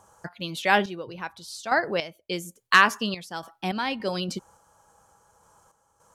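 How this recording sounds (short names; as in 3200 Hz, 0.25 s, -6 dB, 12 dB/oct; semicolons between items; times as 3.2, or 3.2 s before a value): random-step tremolo, depth 80%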